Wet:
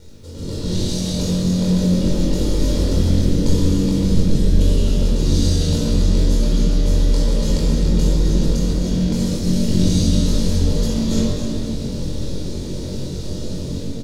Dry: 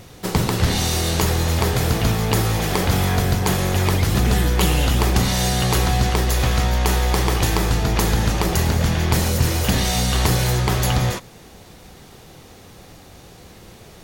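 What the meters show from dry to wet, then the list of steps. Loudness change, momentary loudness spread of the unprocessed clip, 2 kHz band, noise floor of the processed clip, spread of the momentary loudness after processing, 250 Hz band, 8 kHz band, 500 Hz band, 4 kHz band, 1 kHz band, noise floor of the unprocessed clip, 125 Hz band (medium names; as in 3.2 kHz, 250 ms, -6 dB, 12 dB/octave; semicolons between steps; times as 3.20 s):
0.0 dB, 2 LU, -14.0 dB, -27 dBFS, 10 LU, +5.5 dB, -5.0 dB, -0.5 dB, -4.0 dB, -15.5 dB, -44 dBFS, 0.0 dB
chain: low-pass 7.6 kHz 12 dB/octave; high-order bell 1.3 kHz -15 dB 2.5 oct; reverse; compression, threshold -32 dBFS, peak gain reduction 18 dB; reverse; peak limiter -27.5 dBFS, peak gain reduction 4.5 dB; level rider gain up to 13 dB; added noise pink -59 dBFS; ring modulator 100 Hz; doubling 22 ms -2.5 dB; on a send: echo whose repeats swap between lows and highs 130 ms, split 1.3 kHz, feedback 58%, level -4 dB; on the sum: simulated room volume 3700 m³, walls mixed, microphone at 4.6 m; trim -3.5 dB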